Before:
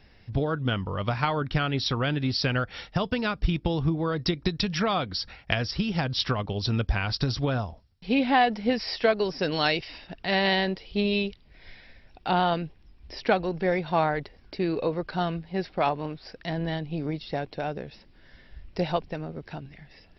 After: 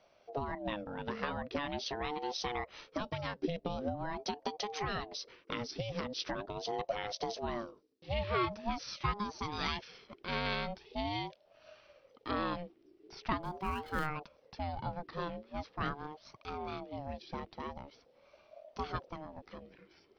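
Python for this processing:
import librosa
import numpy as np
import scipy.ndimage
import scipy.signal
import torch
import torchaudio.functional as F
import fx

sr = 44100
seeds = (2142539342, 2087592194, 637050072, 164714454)

y = fx.dead_time(x, sr, dead_ms=0.055, at=(13.4, 14.05), fade=0.02)
y = fx.ring_lfo(y, sr, carrier_hz=480.0, swing_pct=30, hz=0.43)
y = F.gain(torch.from_numpy(y), -8.5).numpy()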